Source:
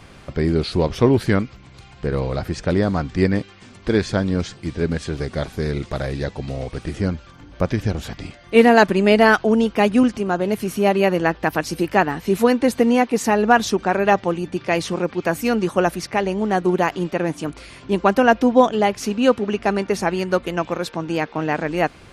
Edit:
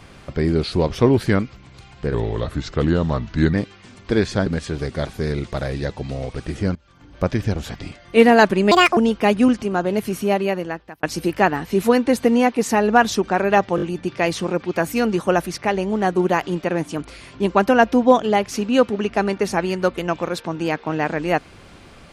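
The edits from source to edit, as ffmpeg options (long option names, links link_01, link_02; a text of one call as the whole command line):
ffmpeg -i in.wav -filter_complex "[0:a]asplit=11[link_01][link_02][link_03][link_04][link_05][link_06][link_07][link_08][link_09][link_10][link_11];[link_01]atrim=end=2.144[link_12];[link_02]atrim=start=2.14:end=3.31,asetpts=PTS-STARTPTS,asetrate=37044,aresample=44100[link_13];[link_03]atrim=start=3.306:end=4.242[link_14];[link_04]atrim=start=4.848:end=7.14,asetpts=PTS-STARTPTS,afade=type=out:start_time=2.288:duration=0.004:curve=hsin:silence=0.0668344[link_15];[link_05]atrim=start=7.14:end=9.104,asetpts=PTS-STARTPTS,afade=type=in:duration=0.48:silence=0.0668344[link_16];[link_06]atrim=start=9.1:end=9.52,asetpts=PTS-STARTPTS,asetrate=71883,aresample=44100,atrim=end_sample=11363,asetpts=PTS-STARTPTS[link_17];[link_07]atrim=start=9.516:end=11.58,asetpts=PTS-STARTPTS,afade=type=out:start_time=1.164:duration=0.9[link_18];[link_08]atrim=start=11.58:end=14.332,asetpts=PTS-STARTPTS,afade=type=in:duration=0.004:curve=hsin[link_19];[link_09]atrim=start=14.308:end=14.332[link_20];[link_10]atrim=start=14.308:end=14.332[link_21];[link_11]atrim=start=14.308[link_22];[link_12][link_13]acrossfade=duration=0.004:curve1=hsin:curve2=hsin[link_23];[link_23][link_14]acrossfade=duration=0.004:curve1=hsin:curve2=hsin[link_24];[link_15][link_16]concat=n=2:v=0:a=1[link_25];[link_24][link_25]acrossfade=duration=0.004:curve1=hsin:curve2=hsin[link_26];[link_26][link_17]acrossfade=duration=0.004:curve1=hsin:curve2=hsin[link_27];[link_18][link_19]concat=n=2:v=0:a=1[link_28];[link_27][link_28]acrossfade=duration=0.004:curve1=hsin:curve2=hsin[link_29];[link_29][link_20]acrossfade=duration=0.004:curve1=hsin:curve2=hsin[link_30];[link_30][link_21]acrossfade=duration=0.004:curve1=hsin:curve2=hsin[link_31];[link_31][link_22]acrossfade=duration=0.004:curve1=hsin:curve2=hsin" out.wav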